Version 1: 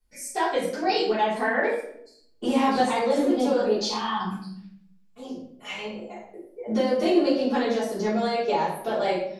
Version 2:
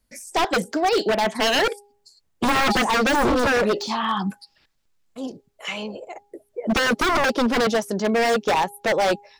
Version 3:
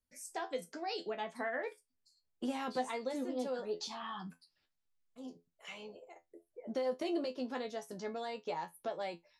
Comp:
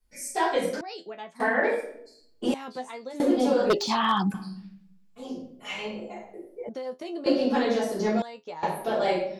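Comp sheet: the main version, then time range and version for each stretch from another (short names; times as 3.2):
1
0.81–1.4 from 3
2.54–3.2 from 3
3.7–4.34 from 2
6.69–7.26 from 3
8.22–8.63 from 3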